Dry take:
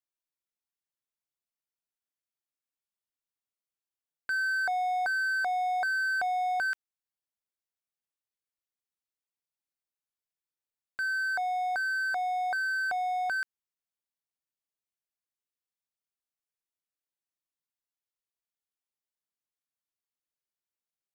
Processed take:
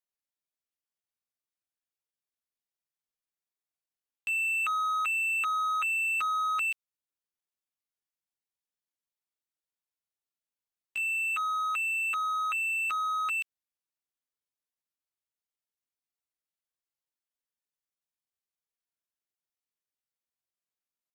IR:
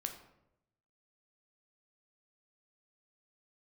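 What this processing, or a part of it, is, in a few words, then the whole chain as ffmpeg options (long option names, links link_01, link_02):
chipmunk voice: -af "asetrate=76340,aresample=44100,atempo=0.577676"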